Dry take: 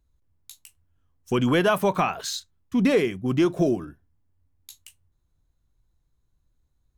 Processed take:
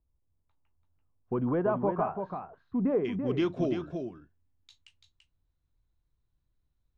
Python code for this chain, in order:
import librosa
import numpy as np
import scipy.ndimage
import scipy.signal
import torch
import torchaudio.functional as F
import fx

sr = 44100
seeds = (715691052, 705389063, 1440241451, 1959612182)

y = fx.ladder_lowpass(x, sr, hz=fx.steps((0.0, 1300.0), (3.04, 5300.0)), resonance_pct=20)
y = y + 10.0 ** (-6.5 / 20.0) * np.pad(y, (int(337 * sr / 1000.0), 0))[:len(y)]
y = y * librosa.db_to_amplitude(-2.5)